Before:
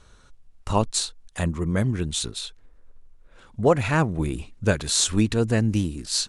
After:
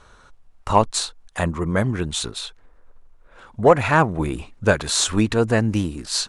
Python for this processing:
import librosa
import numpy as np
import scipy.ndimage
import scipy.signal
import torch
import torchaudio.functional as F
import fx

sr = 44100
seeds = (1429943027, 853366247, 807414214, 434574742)

y = fx.peak_eq(x, sr, hz=990.0, db=9.5, octaves=2.4)
y = 10.0 ** (-0.5 / 20.0) * np.tanh(y / 10.0 ** (-0.5 / 20.0))